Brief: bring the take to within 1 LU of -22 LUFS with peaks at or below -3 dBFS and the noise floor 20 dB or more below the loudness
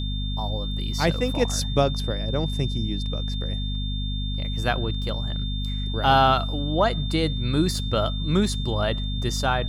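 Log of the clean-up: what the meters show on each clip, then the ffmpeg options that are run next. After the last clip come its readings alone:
hum 50 Hz; harmonics up to 250 Hz; hum level -25 dBFS; steady tone 3600 Hz; tone level -34 dBFS; loudness -25.0 LUFS; peak -8.0 dBFS; loudness target -22.0 LUFS
-> -af "bandreject=f=50:t=h:w=6,bandreject=f=100:t=h:w=6,bandreject=f=150:t=h:w=6,bandreject=f=200:t=h:w=6,bandreject=f=250:t=h:w=6"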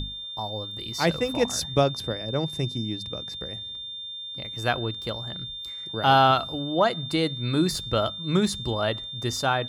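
hum none; steady tone 3600 Hz; tone level -34 dBFS
-> -af "bandreject=f=3.6k:w=30"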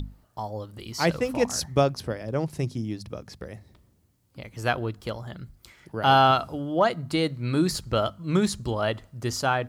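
steady tone none; loudness -26.0 LUFS; peak -8.0 dBFS; loudness target -22.0 LUFS
-> -af "volume=4dB"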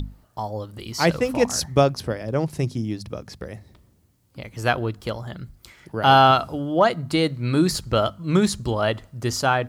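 loudness -22.0 LUFS; peak -4.0 dBFS; noise floor -59 dBFS

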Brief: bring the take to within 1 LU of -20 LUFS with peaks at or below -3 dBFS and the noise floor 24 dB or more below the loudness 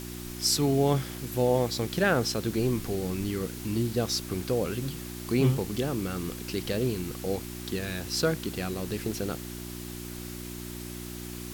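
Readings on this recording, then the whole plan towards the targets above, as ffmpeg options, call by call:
hum 60 Hz; harmonics up to 360 Hz; hum level -37 dBFS; noise floor -39 dBFS; noise floor target -54 dBFS; loudness -29.5 LUFS; peak -11.0 dBFS; loudness target -20.0 LUFS
-> -af "bandreject=f=60:t=h:w=4,bandreject=f=120:t=h:w=4,bandreject=f=180:t=h:w=4,bandreject=f=240:t=h:w=4,bandreject=f=300:t=h:w=4,bandreject=f=360:t=h:w=4"
-af "afftdn=nr=15:nf=-39"
-af "volume=9.5dB,alimiter=limit=-3dB:level=0:latency=1"

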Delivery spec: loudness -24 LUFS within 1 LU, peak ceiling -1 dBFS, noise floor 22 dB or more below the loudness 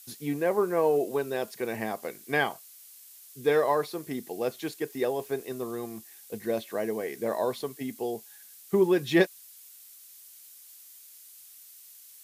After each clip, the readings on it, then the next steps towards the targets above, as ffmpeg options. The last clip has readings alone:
noise floor -51 dBFS; noise floor target -52 dBFS; loudness -29.5 LUFS; peak -9.0 dBFS; loudness target -24.0 LUFS
-> -af "afftdn=nr=6:nf=-51"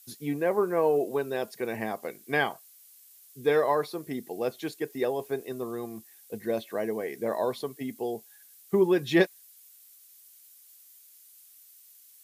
noise floor -55 dBFS; loudness -29.5 LUFS; peak -9.0 dBFS; loudness target -24.0 LUFS
-> -af "volume=5.5dB"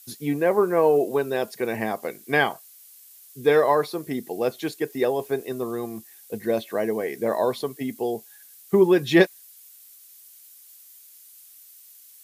loudness -24.0 LUFS; peak -3.5 dBFS; noise floor -50 dBFS

